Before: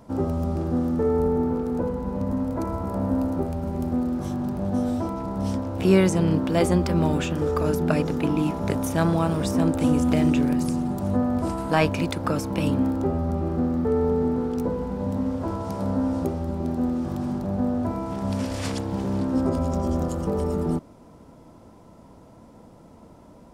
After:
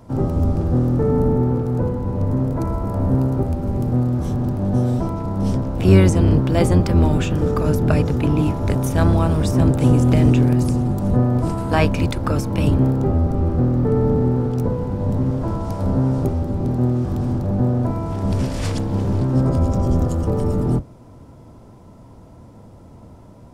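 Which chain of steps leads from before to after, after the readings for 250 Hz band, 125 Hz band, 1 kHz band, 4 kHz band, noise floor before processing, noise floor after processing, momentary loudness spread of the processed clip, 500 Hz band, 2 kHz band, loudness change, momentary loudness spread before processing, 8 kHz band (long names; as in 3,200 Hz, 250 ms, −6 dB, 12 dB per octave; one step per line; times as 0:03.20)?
+3.5 dB, +10.5 dB, +2.0 dB, +2.0 dB, −49 dBFS, −43 dBFS, 7 LU, +3.0 dB, +2.0 dB, +5.5 dB, 7 LU, +2.0 dB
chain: sub-octave generator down 1 octave, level +4 dB
level +2 dB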